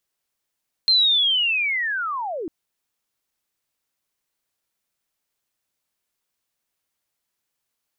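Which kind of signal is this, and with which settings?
glide linear 4,200 Hz → 290 Hz −13 dBFS → −26.5 dBFS 1.60 s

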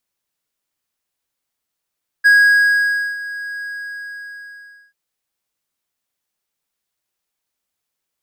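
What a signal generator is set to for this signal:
note with an ADSR envelope triangle 1,650 Hz, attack 22 ms, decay 902 ms, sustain −18 dB, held 1.38 s, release 1,310 ms −4.5 dBFS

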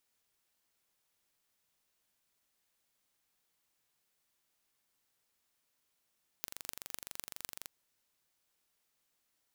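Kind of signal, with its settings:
impulse train 23.8 per second, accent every 6, −10 dBFS 1.26 s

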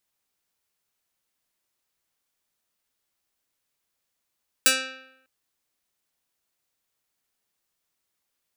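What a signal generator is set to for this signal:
Karplus-Strong string C4, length 0.60 s, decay 0.83 s, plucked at 0.25, medium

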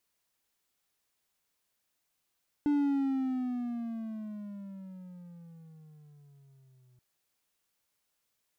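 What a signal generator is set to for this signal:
pitch glide with a swell triangle, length 4.33 s, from 294 Hz, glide −15 semitones, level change −37 dB, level −21.5 dB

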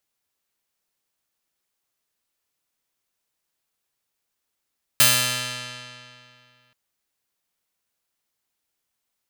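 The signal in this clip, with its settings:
Karplus-Strong string B2, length 1.73 s, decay 2.48 s, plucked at 0.34, bright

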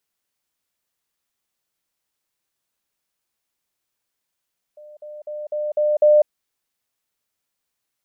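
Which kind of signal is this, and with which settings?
level staircase 600 Hz −39.5 dBFS, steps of 6 dB, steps 6, 0.20 s 0.05 s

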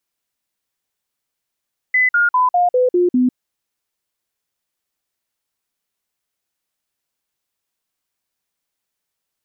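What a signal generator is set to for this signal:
stepped sweep 2,010 Hz down, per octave 2, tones 7, 0.15 s, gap 0.05 s −11 dBFS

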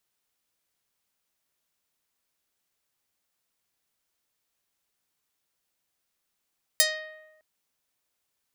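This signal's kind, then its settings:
Karplus-Strong string D#5, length 0.61 s, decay 1.14 s, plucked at 0.47, medium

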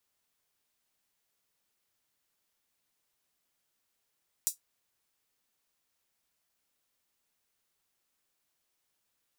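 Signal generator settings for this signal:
closed synth hi-hat, high-pass 6,800 Hz, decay 0.13 s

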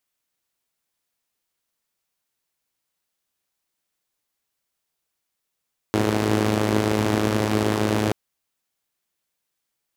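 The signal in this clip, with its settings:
pulse-train model of a four-cylinder engine, steady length 2.18 s, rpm 3,200, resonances 120/230/340 Hz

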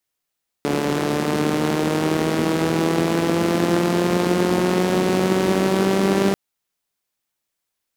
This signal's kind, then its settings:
pulse-train model of a four-cylinder engine, changing speed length 5.69 s, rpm 4,300, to 5,900, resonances 220/330 Hz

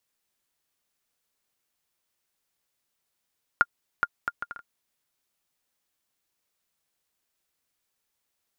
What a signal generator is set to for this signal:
bouncing ball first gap 0.42 s, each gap 0.59, 1,410 Hz, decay 44 ms −6.5 dBFS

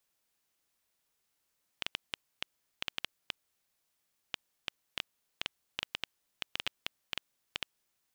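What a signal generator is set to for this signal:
Geiger counter clicks 5.1 per second −14.5 dBFS 5.87 s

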